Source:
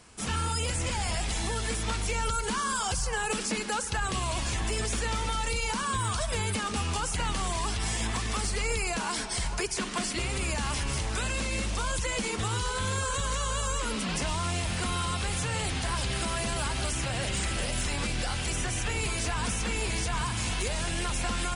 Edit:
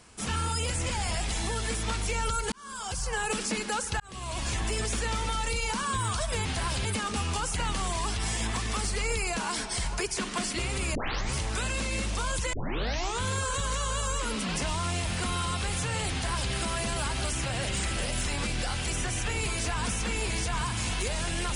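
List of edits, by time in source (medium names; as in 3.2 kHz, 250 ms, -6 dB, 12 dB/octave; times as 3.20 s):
2.52–3.16 s: fade in
4.00–4.49 s: fade in linear
10.55 s: tape start 0.39 s
12.13 s: tape start 0.69 s
15.72–16.12 s: copy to 6.45 s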